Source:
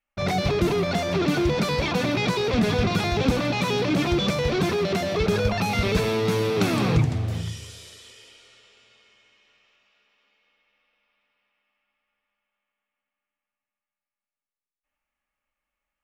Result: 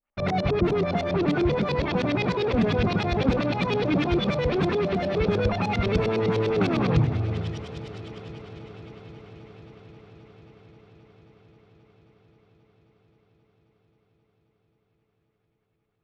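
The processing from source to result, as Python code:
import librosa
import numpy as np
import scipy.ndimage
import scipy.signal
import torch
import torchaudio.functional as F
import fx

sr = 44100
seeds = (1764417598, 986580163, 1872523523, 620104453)

y = fx.filter_lfo_lowpass(x, sr, shape='saw_up', hz=9.9, low_hz=390.0, high_hz=5100.0, q=1.1)
y = fx.echo_heads(y, sr, ms=266, heads='second and third', feedback_pct=69, wet_db=-19)
y = y * 10.0 ** (-1.0 / 20.0)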